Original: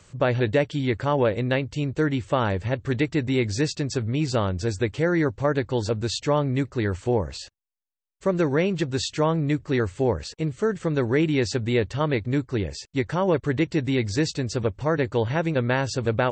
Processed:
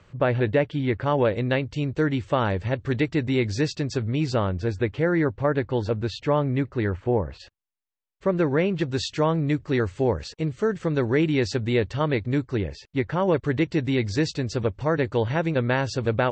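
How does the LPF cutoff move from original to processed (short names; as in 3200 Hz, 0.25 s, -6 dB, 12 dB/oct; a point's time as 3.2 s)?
2900 Hz
from 1.06 s 5400 Hz
from 4.34 s 3000 Hz
from 6.89 s 2000 Hz
from 7.4 s 3400 Hz
from 8.81 s 5900 Hz
from 12.57 s 3300 Hz
from 13.2 s 5700 Hz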